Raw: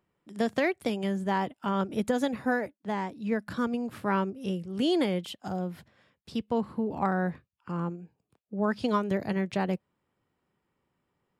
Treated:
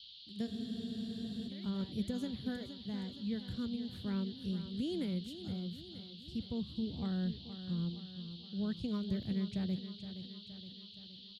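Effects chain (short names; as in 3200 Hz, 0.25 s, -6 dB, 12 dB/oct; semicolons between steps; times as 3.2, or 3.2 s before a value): passive tone stack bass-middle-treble 10-0-1; on a send: feedback echo 0.469 s, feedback 55%, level -11 dB; on the sum: band noise 3000–4500 Hz -62 dBFS; low shelf 150 Hz +8 dB; spectral freeze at 0.48, 0.99 s; gain +7.5 dB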